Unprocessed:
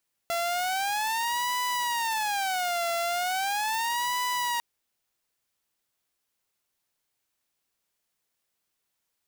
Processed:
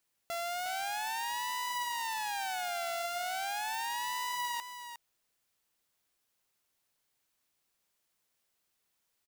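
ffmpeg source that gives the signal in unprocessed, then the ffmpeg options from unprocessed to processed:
-f lavfi -i "aevalsrc='0.0668*(2*mod((836*t-155/(2*PI*0.38)*sin(2*PI*0.38*t)),1)-1)':d=4.3:s=44100"
-af "alimiter=level_in=7.5dB:limit=-24dB:level=0:latency=1,volume=-7.5dB,aecho=1:1:358:0.355"

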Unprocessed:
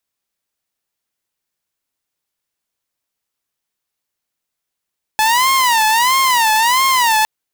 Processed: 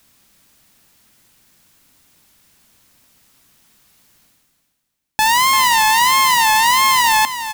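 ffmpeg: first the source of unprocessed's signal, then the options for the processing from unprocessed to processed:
-f lavfi -i "aevalsrc='0.376*(2*mod((967*t-103/(2*PI*1.5)*sin(2*PI*1.5*t)),1)-1)':d=2.06:s=44100"
-af "lowshelf=f=320:t=q:w=1.5:g=6,areverse,acompressor=mode=upward:threshold=-35dB:ratio=2.5,areverse,aecho=1:1:341|682|1023:0.282|0.062|0.0136"

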